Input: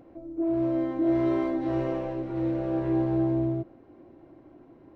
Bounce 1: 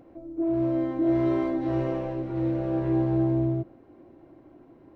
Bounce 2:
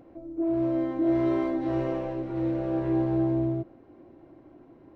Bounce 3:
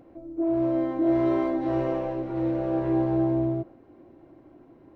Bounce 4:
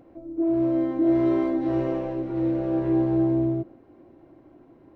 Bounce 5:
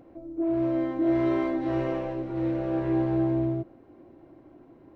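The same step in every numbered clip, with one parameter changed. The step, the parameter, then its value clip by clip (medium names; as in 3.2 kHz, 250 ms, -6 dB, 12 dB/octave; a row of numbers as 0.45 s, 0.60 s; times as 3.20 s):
dynamic bell, frequency: 110 Hz, 7.9 kHz, 760 Hz, 280 Hz, 2.1 kHz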